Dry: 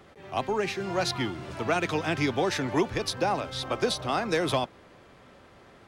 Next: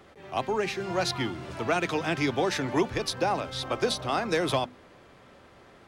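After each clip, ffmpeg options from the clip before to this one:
-af "bandreject=f=50:t=h:w=6,bandreject=f=100:t=h:w=6,bandreject=f=150:t=h:w=6,bandreject=f=200:t=h:w=6,bandreject=f=250:t=h:w=6"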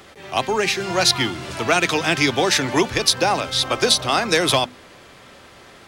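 -af "highshelf=f=2100:g=11,volume=2"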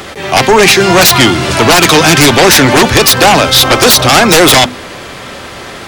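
-af "aeval=exprs='0.668*sin(PI/2*4.47*val(0)/0.668)':c=same,volume=1.33"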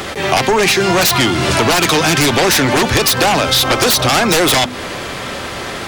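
-af "acompressor=threshold=0.251:ratio=10,volume=1.19"

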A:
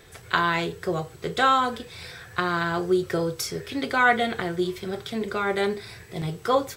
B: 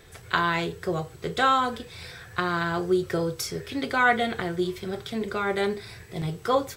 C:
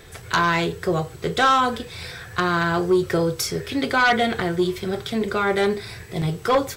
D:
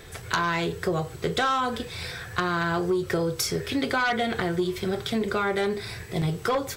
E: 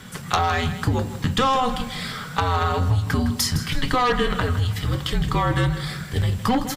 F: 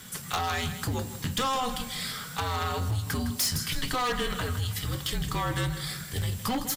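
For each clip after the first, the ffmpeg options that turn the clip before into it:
-af "lowshelf=f=110:g=4.5,volume=0.841"
-af "aeval=exprs='0.473*sin(PI/2*2.51*val(0)/0.473)':c=same,volume=0.531"
-af "acompressor=threshold=0.0794:ratio=6"
-af "afreqshift=-260,aecho=1:1:160|320|480|640:0.237|0.0901|0.0342|0.013,volume=1.68"
-af "crystalizer=i=3:c=0,asoftclip=type=hard:threshold=0.178,volume=0.376"

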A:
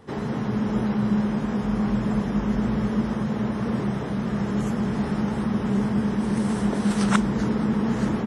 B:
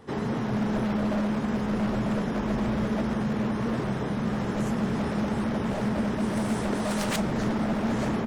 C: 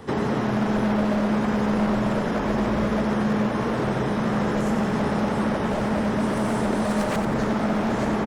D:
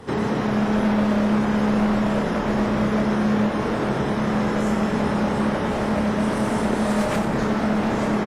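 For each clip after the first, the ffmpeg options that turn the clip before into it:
-af "aeval=exprs='0.0891*(abs(mod(val(0)/0.0891+3,4)-2)-1)':c=same,bandreject=f=50:t=h:w=6,bandreject=f=100:t=h:w=6,bandreject=f=150:t=h:w=6,bandreject=f=200:t=h:w=6"
-filter_complex "[0:a]acrossover=split=350|1900[s0][s1][s2];[s0]acompressor=threshold=0.0158:ratio=4[s3];[s1]acompressor=threshold=0.0178:ratio=4[s4];[s2]acompressor=threshold=0.00282:ratio=4[s5];[s3][s4][s5]amix=inputs=3:normalize=0,aecho=1:1:90|180|270|360|450|540|630:0.422|0.228|0.123|0.0664|0.0359|0.0194|0.0105,volume=2.82"
-filter_complex "[0:a]asplit=2[s0][s1];[s1]adelay=28,volume=0.531[s2];[s0][s2]amix=inputs=2:normalize=0" -ar 32000 -c:a aac -b:a 48k

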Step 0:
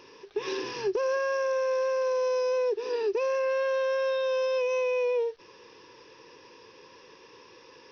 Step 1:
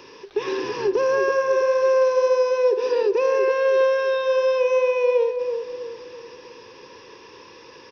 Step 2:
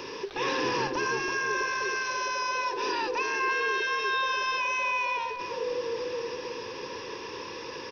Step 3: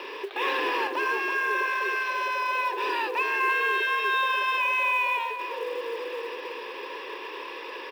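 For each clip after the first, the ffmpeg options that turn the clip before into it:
-filter_complex "[0:a]acrossover=split=220|2200[s0][s1][s2];[s2]alimiter=level_in=5.62:limit=0.0631:level=0:latency=1:release=209,volume=0.178[s3];[s0][s1][s3]amix=inputs=3:normalize=0,asplit=2[s4][s5];[s5]adelay=327,lowpass=f=870:p=1,volume=0.562,asplit=2[s6][s7];[s7]adelay=327,lowpass=f=870:p=1,volume=0.48,asplit=2[s8][s9];[s9]adelay=327,lowpass=f=870:p=1,volume=0.48,asplit=2[s10][s11];[s11]adelay=327,lowpass=f=870:p=1,volume=0.48,asplit=2[s12][s13];[s13]adelay=327,lowpass=f=870:p=1,volume=0.48,asplit=2[s14][s15];[s15]adelay=327,lowpass=f=870:p=1,volume=0.48[s16];[s4][s6][s8][s10][s12][s14][s16]amix=inputs=7:normalize=0,volume=2.24"
-filter_complex "[0:a]afftfilt=real='re*lt(hypot(re,im),0.316)':imag='im*lt(hypot(re,im),0.316)':win_size=1024:overlap=0.75,asplit=2[s0][s1];[s1]alimiter=level_in=2.24:limit=0.0631:level=0:latency=1:release=35,volume=0.447,volume=1.06[s2];[s0][s2]amix=inputs=2:normalize=0"
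-af "highpass=f=390:w=0.5412,highpass=f=390:w=1.3066,equalizer=f=490:t=q:w=4:g=-6,equalizer=f=900:t=q:w=4:g=-3,equalizer=f=1400:t=q:w=4:g=-4,lowpass=f=3500:w=0.5412,lowpass=f=3500:w=1.3066,acrusher=bits=7:mode=log:mix=0:aa=0.000001,volume=1.78"

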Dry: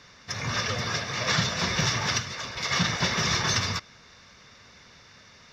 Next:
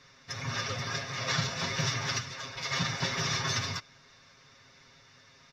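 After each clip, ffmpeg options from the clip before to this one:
-af "aecho=1:1:7.4:0.75,volume=0.422"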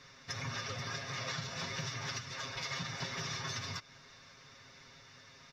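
-af "acompressor=threshold=0.0126:ratio=6,volume=1.12"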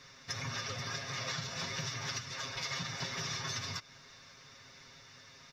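-af "highshelf=f=4900:g=5"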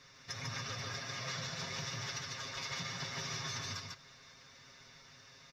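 -af "aecho=1:1:147:0.708,volume=0.631"

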